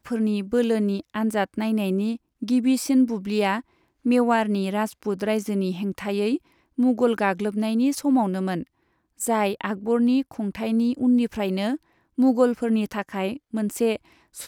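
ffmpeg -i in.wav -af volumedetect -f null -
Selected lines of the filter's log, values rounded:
mean_volume: -23.5 dB
max_volume: -7.6 dB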